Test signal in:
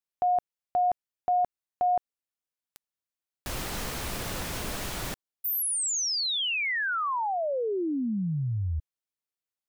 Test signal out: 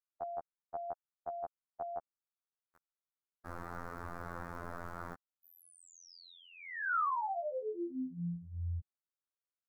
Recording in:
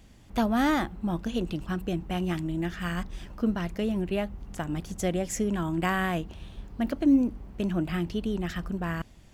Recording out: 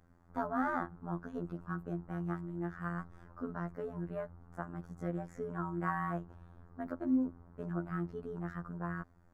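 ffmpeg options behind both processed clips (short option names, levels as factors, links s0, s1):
-filter_complex "[0:a]acrossover=split=4900[s0][s1];[s1]acompressor=threshold=0.00891:ratio=4:attack=1:release=60[s2];[s0][s2]amix=inputs=2:normalize=0,highshelf=f=2000:t=q:w=3:g=-13.5,afftfilt=real='hypot(re,im)*cos(PI*b)':imag='0':win_size=2048:overlap=0.75,volume=0.447"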